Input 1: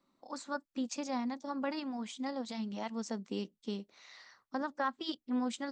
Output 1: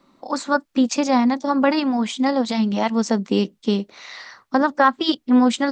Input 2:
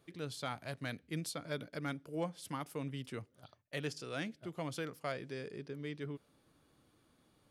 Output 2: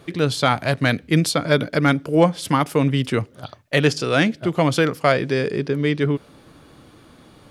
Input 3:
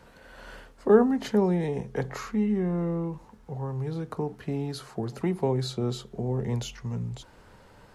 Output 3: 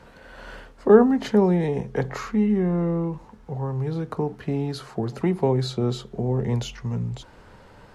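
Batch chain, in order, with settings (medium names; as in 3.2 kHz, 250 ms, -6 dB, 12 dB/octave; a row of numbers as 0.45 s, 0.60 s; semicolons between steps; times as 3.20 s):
treble shelf 7.5 kHz -9 dB; peak normalisation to -3 dBFS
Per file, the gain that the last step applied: +18.5 dB, +22.5 dB, +5.0 dB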